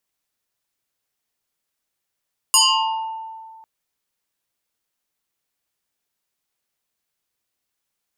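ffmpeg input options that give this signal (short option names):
-f lavfi -i "aevalsrc='0.335*pow(10,-3*t/1.99)*sin(2*PI*891*t+5.7*pow(10,-3*t/1.01)*sin(2*PI*2.19*891*t))':d=1.1:s=44100"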